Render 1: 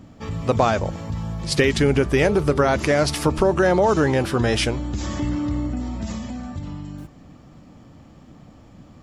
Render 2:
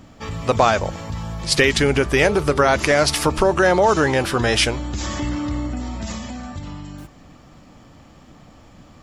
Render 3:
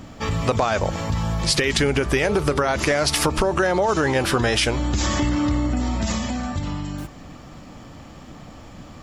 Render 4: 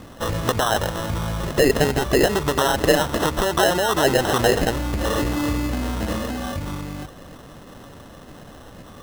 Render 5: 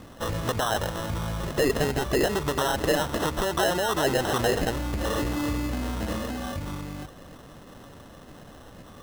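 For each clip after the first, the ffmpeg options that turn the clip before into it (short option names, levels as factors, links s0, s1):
-af "equalizer=f=160:w=0.31:g=-8,volume=2"
-af "alimiter=limit=0.355:level=0:latency=1:release=38,acompressor=threshold=0.0794:ratio=6,volume=1.88"
-af "lowpass=f=1900:t=q:w=5.2,acrusher=samples=19:mix=1:aa=0.000001,volume=0.75"
-af "asoftclip=type=tanh:threshold=0.299,volume=0.596"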